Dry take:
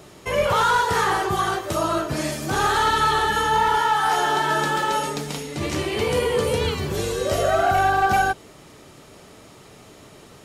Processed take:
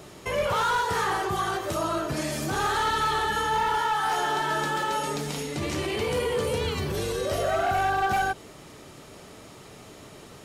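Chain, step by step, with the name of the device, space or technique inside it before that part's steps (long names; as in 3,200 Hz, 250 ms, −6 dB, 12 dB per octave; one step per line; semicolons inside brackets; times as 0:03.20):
0:06.83–0:07.48: notch filter 7,100 Hz, Q 7.7
clipper into limiter (hard clipping −15.5 dBFS, distortion −20 dB; brickwall limiter −20.5 dBFS, peak gain reduction 5 dB)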